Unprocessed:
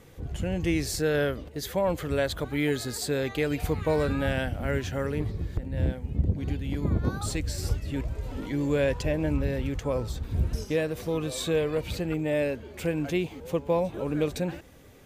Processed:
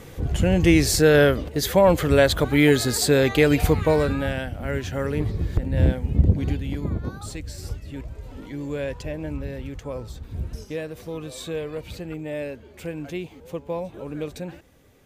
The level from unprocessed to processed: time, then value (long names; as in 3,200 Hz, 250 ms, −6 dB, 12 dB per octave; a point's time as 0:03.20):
0:03.60 +10 dB
0:04.46 −1 dB
0:05.61 +8 dB
0:06.33 +8 dB
0:07.13 −4 dB